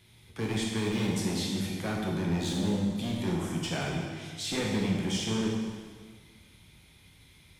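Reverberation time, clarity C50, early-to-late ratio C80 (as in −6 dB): 1.7 s, 0.5 dB, 2.5 dB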